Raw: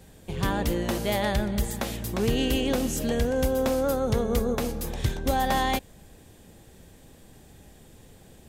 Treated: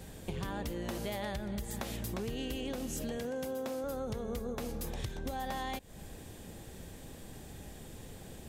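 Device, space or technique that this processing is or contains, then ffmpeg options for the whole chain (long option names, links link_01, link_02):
serial compression, leveller first: -filter_complex "[0:a]asettb=1/sr,asplit=3[link_01][link_02][link_03];[link_01]atrim=end=3.174[link_04];[link_02]atrim=start=3.17:end=3.84,asetpts=PTS-STARTPTS,afade=type=in:duration=0.004:curve=qsin,afade=type=out:start_time=0.666:duration=0.004:curve=qsin,highpass=160[link_05];[link_03]atrim=start=3.836[link_06];[link_04][link_05]acrossfade=duration=0.004:curve1=hsin:curve2=qsin[link_07];[link_07][link_06]acrossfade=duration=0.004:curve1=qsin:curve2=hsin,acompressor=threshold=-27dB:ratio=3,acompressor=threshold=-39dB:ratio=5,volume=3dB"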